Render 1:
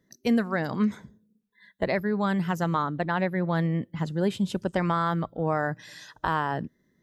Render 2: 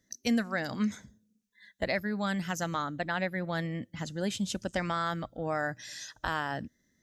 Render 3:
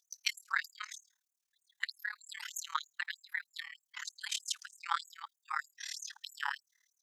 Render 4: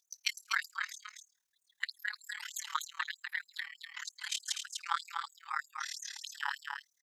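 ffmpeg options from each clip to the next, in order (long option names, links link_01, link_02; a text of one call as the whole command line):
ffmpeg -i in.wav -af "equalizer=frequency=160:width_type=o:width=0.67:gain=-9,equalizer=frequency=400:width_type=o:width=0.67:gain=-10,equalizer=frequency=1000:width_type=o:width=0.67:gain=-9,equalizer=frequency=6300:width_type=o:width=0.67:gain=10" out.wav
ffmpeg -i in.wav -af "tremolo=f=37:d=0.947,afftfilt=real='re*gte(b*sr/1024,790*pow(6500/790,0.5+0.5*sin(2*PI*3.2*pts/sr)))':imag='im*gte(b*sr/1024,790*pow(6500/790,0.5+0.5*sin(2*PI*3.2*pts/sr)))':win_size=1024:overlap=0.75,volume=6dB" out.wav
ffmpeg -i in.wav -af "aecho=1:1:247:0.562" out.wav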